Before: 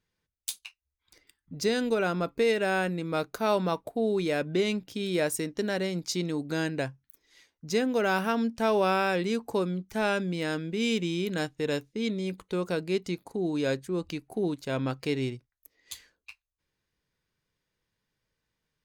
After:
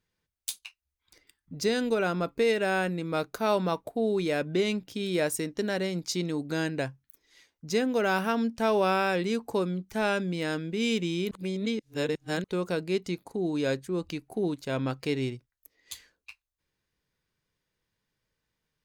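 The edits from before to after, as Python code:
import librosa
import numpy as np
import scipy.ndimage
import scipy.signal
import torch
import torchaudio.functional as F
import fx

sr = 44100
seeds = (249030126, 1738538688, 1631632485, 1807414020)

y = fx.edit(x, sr, fx.reverse_span(start_s=11.31, length_s=1.13), tone=tone)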